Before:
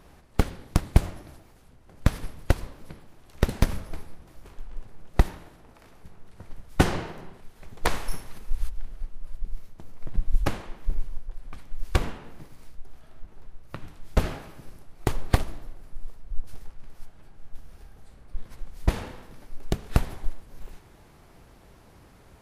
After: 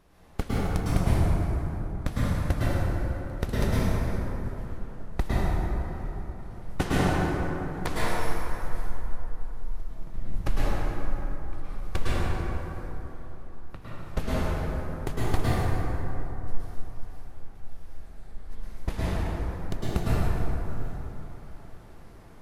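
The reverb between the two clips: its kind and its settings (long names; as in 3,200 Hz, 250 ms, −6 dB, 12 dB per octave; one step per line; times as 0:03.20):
dense smooth reverb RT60 3.7 s, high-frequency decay 0.4×, pre-delay 95 ms, DRR −9.5 dB
level −8.5 dB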